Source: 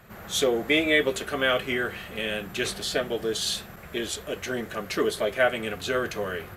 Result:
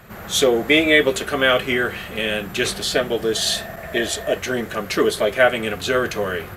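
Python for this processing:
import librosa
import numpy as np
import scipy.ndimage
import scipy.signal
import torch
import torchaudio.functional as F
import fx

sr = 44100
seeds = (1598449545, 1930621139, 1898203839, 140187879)

y = fx.small_body(x, sr, hz=(660.0, 1800.0), ring_ms=45, db=15, at=(3.36, 4.38))
y = y * librosa.db_to_amplitude(7.0)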